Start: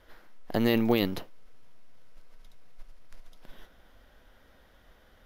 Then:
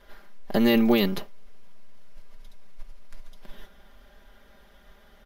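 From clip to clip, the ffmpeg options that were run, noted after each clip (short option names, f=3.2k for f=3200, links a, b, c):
-af "aecho=1:1:5:0.8,volume=2dB"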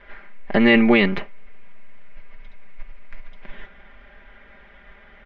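-af "lowpass=f=2.2k:t=q:w=3.5,volume=4.5dB"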